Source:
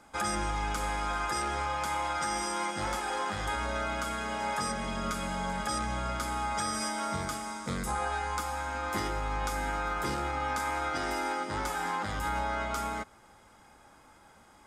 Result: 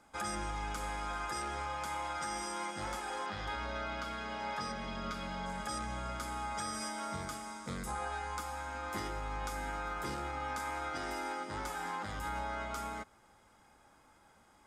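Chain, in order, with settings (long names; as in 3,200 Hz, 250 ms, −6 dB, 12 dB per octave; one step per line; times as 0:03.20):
0:03.26–0:05.46: high shelf with overshoot 6,200 Hz −9 dB, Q 1.5
level −6.5 dB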